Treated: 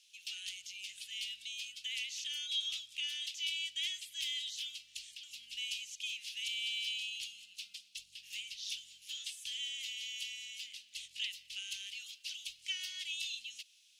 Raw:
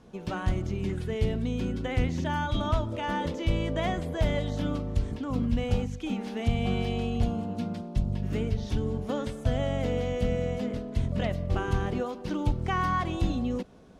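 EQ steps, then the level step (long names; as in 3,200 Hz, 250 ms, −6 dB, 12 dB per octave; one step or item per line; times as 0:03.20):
elliptic high-pass filter 2,700 Hz, stop band 60 dB
+7.0 dB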